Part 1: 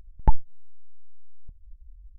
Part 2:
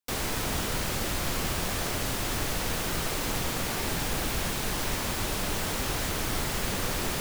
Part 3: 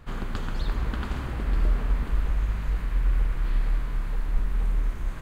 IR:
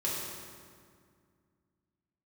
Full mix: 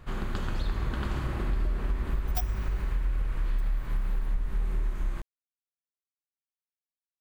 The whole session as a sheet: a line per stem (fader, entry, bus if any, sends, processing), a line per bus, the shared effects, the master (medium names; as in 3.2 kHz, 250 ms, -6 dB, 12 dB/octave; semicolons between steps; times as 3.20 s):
+1.0 dB, 2.10 s, send -22 dB, spectrum inverted on a logarithmic axis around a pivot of 800 Hz; level held to a coarse grid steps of 13 dB
mute
-3.5 dB, 0.00 s, send -7.5 dB, none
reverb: on, RT60 2.1 s, pre-delay 3 ms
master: compression, threshold -24 dBFS, peak gain reduction 9.5 dB